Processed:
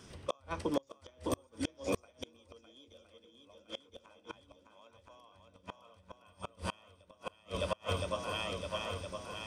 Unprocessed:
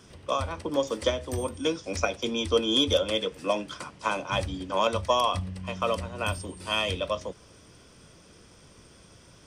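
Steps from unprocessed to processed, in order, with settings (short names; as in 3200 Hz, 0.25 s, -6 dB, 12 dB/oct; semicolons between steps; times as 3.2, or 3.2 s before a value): swung echo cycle 1.014 s, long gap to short 1.5:1, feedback 47%, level -3.5 dB; flipped gate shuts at -18 dBFS, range -34 dB; gain -2 dB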